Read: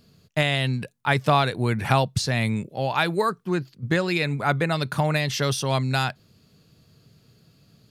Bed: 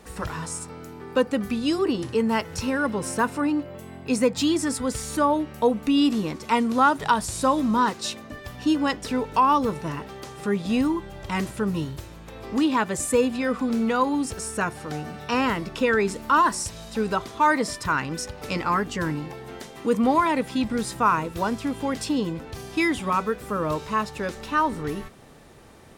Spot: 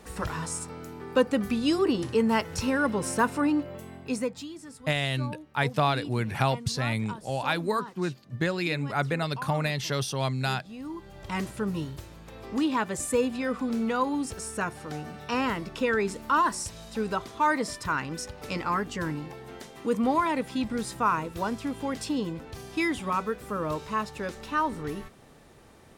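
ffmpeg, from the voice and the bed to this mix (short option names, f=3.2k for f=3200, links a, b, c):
-filter_complex "[0:a]adelay=4500,volume=-5dB[a];[1:a]volume=14dB,afade=t=out:st=3.73:d=0.75:silence=0.11885,afade=t=in:st=10.78:d=0.55:silence=0.177828[b];[a][b]amix=inputs=2:normalize=0"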